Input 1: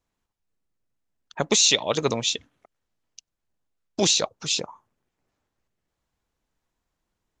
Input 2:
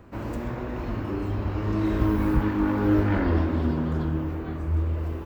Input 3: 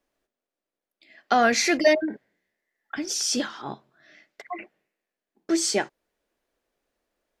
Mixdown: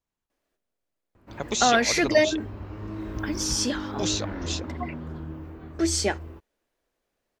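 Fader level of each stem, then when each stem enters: -8.0, -10.0, -1.0 dB; 0.00, 1.15, 0.30 s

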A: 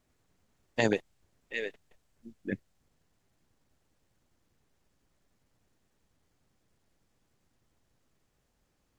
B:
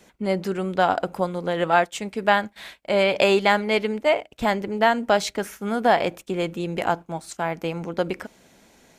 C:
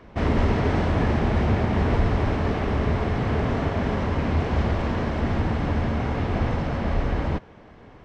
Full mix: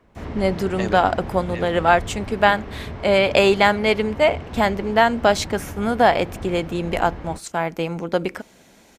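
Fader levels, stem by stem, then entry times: -1.5, +3.0, -10.0 dB; 0.00, 0.15, 0.00 s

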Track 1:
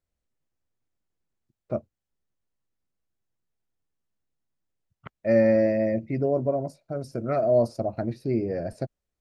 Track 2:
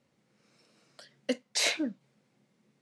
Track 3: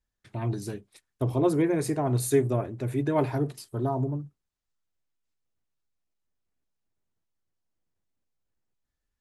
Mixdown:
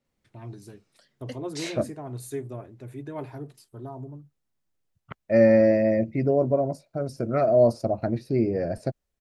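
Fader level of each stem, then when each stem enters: +2.5, -8.5, -10.5 dB; 0.05, 0.00, 0.00 s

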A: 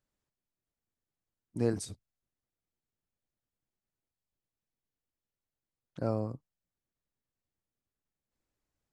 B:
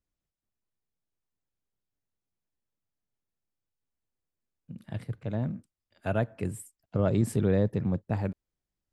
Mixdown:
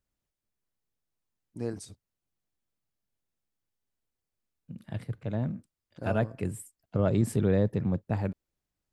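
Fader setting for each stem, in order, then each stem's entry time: -4.5, 0.0 dB; 0.00, 0.00 s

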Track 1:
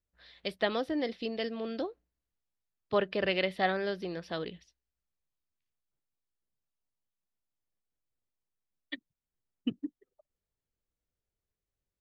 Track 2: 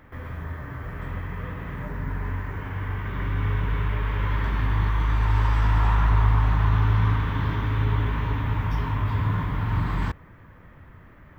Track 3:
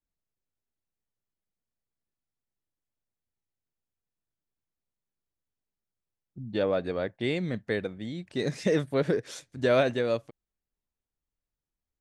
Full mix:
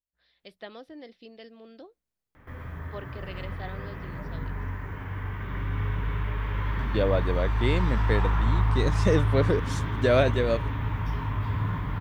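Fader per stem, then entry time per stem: -12.5, -4.0, +1.5 dB; 0.00, 2.35, 0.40 s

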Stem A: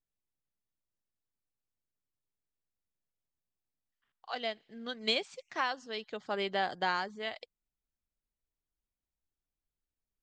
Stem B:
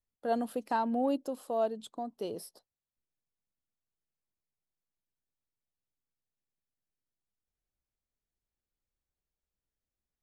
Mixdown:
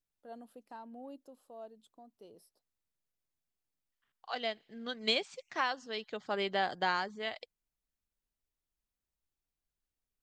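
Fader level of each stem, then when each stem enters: 0.0, -18.0 dB; 0.00, 0.00 s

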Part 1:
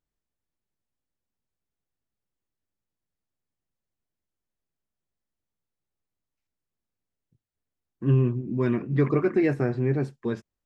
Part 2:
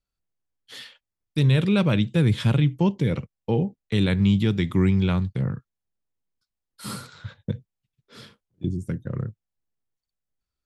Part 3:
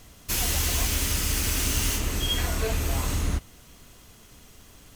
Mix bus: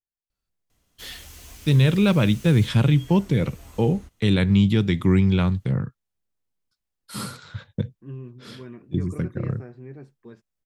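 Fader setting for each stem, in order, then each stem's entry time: -16.0, +2.0, -19.0 dB; 0.00, 0.30, 0.70 s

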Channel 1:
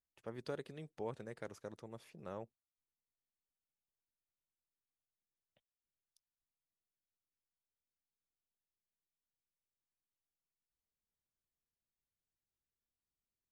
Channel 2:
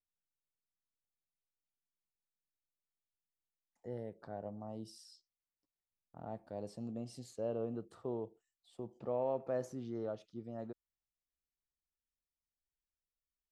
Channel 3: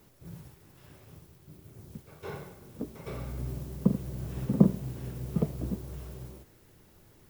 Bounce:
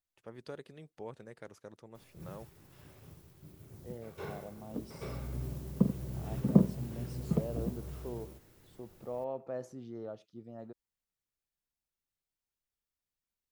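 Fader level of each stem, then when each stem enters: -2.0, -2.5, -2.5 dB; 0.00, 0.00, 1.95 s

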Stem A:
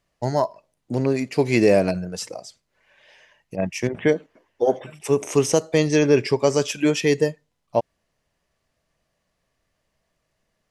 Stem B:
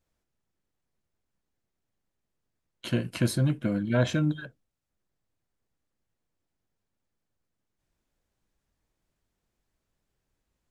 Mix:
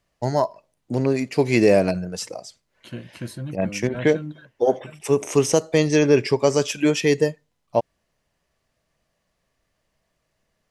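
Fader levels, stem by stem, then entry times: +0.5, -7.5 dB; 0.00, 0.00 s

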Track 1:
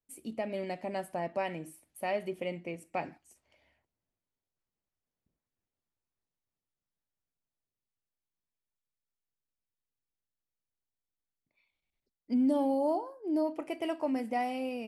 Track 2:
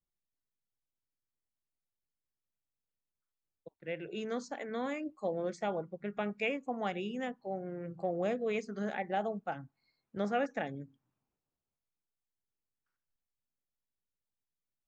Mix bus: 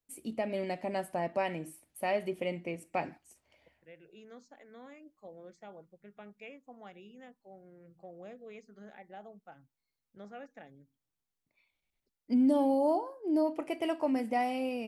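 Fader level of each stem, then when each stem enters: +1.5, -15.0 dB; 0.00, 0.00 s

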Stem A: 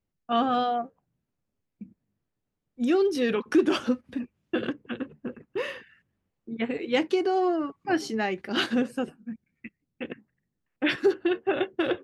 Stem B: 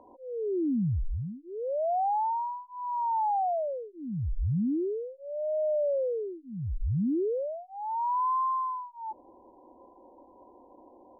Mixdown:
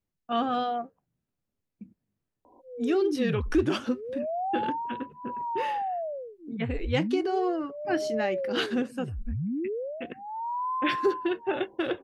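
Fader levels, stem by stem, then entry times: -3.0, -3.0 dB; 0.00, 2.45 s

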